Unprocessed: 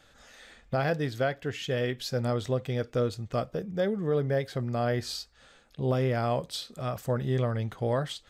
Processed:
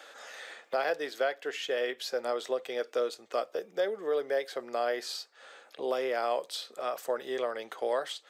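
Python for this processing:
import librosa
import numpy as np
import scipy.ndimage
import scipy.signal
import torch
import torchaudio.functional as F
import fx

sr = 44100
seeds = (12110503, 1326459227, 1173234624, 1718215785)

y = scipy.signal.sosfilt(scipy.signal.butter(4, 400.0, 'highpass', fs=sr, output='sos'), x)
y = fx.band_squash(y, sr, depth_pct=40)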